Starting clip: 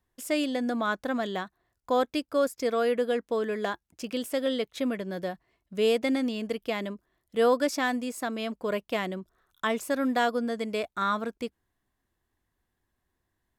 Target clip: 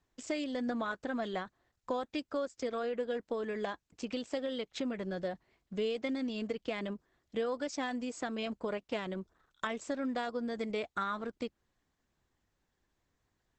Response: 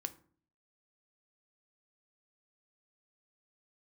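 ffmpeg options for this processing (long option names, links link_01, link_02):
-af "highshelf=frequency=12000:gain=-7,acompressor=threshold=-33dB:ratio=4" -ar 48000 -c:a libopus -b:a 10k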